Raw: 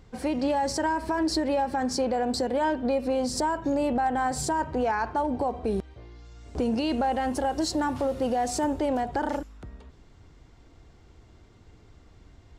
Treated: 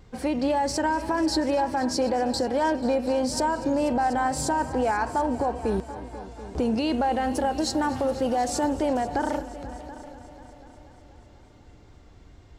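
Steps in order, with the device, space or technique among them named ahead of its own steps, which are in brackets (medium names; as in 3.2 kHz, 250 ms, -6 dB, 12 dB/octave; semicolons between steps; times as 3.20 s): multi-head tape echo (multi-head delay 244 ms, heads all three, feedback 49%, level -19 dB; wow and flutter 25 cents); trim +1.5 dB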